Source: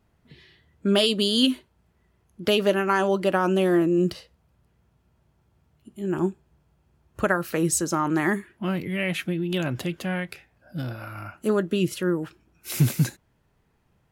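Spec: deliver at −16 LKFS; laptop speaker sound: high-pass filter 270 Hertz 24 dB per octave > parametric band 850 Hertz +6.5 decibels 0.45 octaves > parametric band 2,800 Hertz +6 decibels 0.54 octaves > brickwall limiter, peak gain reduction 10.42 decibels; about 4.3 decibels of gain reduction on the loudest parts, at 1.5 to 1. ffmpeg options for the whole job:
ffmpeg -i in.wav -af "acompressor=threshold=-27dB:ratio=1.5,highpass=frequency=270:width=0.5412,highpass=frequency=270:width=1.3066,equalizer=frequency=850:width_type=o:width=0.45:gain=6.5,equalizer=frequency=2800:width_type=o:width=0.54:gain=6,volume=15dB,alimiter=limit=-5dB:level=0:latency=1" out.wav

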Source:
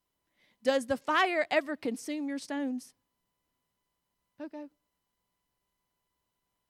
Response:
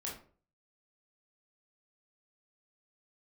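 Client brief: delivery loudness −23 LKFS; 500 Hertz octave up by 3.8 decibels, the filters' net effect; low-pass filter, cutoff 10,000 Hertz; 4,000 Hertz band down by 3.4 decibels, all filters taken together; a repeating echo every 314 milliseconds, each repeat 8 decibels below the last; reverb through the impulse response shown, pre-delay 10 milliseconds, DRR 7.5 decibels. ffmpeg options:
-filter_complex "[0:a]lowpass=10000,equalizer=frequency=500:width_type=o:gain=4.5,equalizer=frequency=4000:width_type=o:gain=-5,aecho=1:1:314|628|942|1256|1570:0.398|0.159|0.0637|0.0255|0.0102,asplit=2[link_01][link_02];[1:a]atrim=start_sample=2205,adelay=10[link_03];[link_02][link_03]afir=irnorm=-1:irlink=0,volume=-7.5dB[link_04];[link_01][link_04]amix=inputs=2:normalize=0,volume=5.5dB"

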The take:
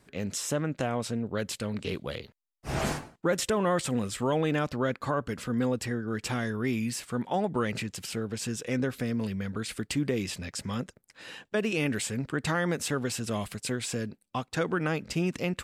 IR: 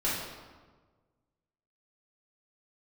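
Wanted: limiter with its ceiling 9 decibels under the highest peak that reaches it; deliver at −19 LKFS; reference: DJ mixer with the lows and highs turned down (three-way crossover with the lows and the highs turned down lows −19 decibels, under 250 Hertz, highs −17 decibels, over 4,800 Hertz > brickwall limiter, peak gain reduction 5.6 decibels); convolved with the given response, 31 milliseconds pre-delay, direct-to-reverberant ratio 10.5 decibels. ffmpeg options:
-filter_complex "[0:a]alimiter=level_in=1dB:limit=-24dB:level=0:latency=1,volume=-1dB,asplit=2[link_01][link_02];[1:a]atrim=start_sample=2205,adelay=31[link_03];[link_02][link_03]afir=irnorm=-1:irlink=0,volume=-19.5dB[link_04];[link_01][link_04]amix=inputs=2:normalize=0,acrossover=split=250 4800:gain=0.112 1 0.141[link_05][link_06][link_07];[link_05][link_06][link_07]amix=inputs=3:normalize=0,volume=20dB,alimiter=limit=-7.5dB:level=0:latency=1"

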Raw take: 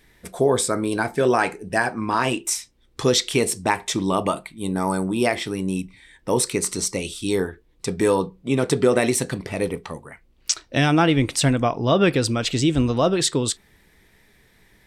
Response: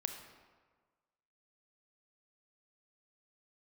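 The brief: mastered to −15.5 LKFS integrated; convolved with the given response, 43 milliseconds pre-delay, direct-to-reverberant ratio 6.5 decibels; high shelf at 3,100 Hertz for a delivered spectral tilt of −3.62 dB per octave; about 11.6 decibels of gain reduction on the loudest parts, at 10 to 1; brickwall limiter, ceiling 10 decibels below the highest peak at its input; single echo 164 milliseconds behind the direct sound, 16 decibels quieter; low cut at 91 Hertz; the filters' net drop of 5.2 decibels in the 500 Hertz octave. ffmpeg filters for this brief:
-filter_complex "[0:a]highpass=91,equalizer=frequency=500:width_type=o:gain=-7,highshelf=frequency=3100:gain=6.5,acompressor=threshold=-23dB:ratio=10,alimiter=limit=-17.5dB:level=0:latency=1,aecho=1:1:164:0.158,asplit=2[link_01][link_02];[1:a]atrim=start_sample=2205,adelay=43[link_03];[link_02][link_03]afir=irnorm=-1:irlink=0,volume=-6.5dB[link_04];[link_01][link_04]amix=inputs=2:normalize=0,volume=13.5dB"

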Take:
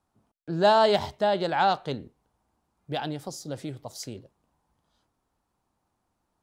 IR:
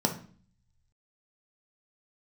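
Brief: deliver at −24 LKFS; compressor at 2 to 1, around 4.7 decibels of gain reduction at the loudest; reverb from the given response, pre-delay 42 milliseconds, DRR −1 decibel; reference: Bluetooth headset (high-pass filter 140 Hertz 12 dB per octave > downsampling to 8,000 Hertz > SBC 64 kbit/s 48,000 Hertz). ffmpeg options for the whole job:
-filter_complex "[0:a]acompressor=threshold=-24dB:ratio=2,asplit=2[link_01][link_02];[1:a]atrim=start_sample=2205,adelay=42[link_03];[link_02][link_03]afir=irnorm=-1:irlink=0,volume=-8.5dB[link_04];[link_01][link_04]amix=inputs=2:normalize=0,highpass=140,aresample=8000,aresample=44100,volume=-1dB" -ar 48000 -c:a sbc -b:a 64k

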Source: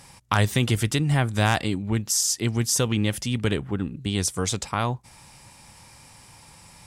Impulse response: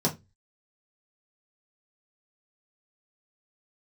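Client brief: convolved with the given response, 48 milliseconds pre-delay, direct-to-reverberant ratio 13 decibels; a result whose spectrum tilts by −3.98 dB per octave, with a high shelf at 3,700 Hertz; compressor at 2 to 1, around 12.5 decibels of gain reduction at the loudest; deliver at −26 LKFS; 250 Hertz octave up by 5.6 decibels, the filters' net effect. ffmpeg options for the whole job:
-filter_complex "[0:a]equalizer=frequency=250:width_type=o:gain=7,highshelf=frequency=3700:gain=8,acompressor=threshold=-38dB:ratio=2,asplit=2[link_01][link_02];[1:a]atrim=start_sample=2205,adelay=48[link_03];[link_02][link_03]afir=irnorm=-1:irlink=0,volume=-23dB[link_04];[link_01][link_04]amix=inputs=2:normalize=0,volume=5dB"

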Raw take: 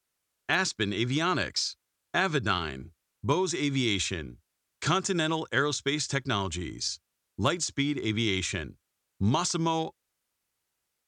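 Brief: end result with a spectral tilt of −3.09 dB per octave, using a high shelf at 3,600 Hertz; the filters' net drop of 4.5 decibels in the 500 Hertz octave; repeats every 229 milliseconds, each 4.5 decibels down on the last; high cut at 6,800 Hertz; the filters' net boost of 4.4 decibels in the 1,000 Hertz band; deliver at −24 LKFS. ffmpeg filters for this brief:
ffmpeg -i in.wav -af "lowpass=6800,equalizer=frequency=500:width_type=o:gain=-8.5,equalizer=frequency=1000:width_type=o:gain=7,highshelf=frequency=3600:gain=5,aecho=1:1:229|458|687|916|1145|1374|1603|1832|2061:0.596|0.357|0.214|0.129|0.0772|0.0463|0.0278|0.0167|0.01,volume=2dB" out.wav

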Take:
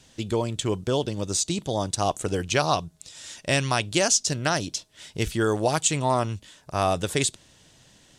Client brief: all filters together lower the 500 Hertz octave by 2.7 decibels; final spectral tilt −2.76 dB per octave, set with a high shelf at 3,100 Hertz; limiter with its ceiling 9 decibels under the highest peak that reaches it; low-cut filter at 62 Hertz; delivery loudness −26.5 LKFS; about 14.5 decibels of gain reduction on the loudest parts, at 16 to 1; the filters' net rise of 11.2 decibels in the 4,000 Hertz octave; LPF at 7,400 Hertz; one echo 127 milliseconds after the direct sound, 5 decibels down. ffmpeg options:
ffmpeg -i in.wav -af "highpass=62,lowpass=7400,equalizer=frequency=500:width_type=o:gain=-4,highshelf=frequency=3100:gain=7.5,equalizer=frequency=4000:width_type=o:gain=9,acompressor=threshold=-23dB:ratio=16,alimiter=limit=-15dB:level=0:latency=1,aecho=1:1:127:0.562,volume=2dB" out.wav

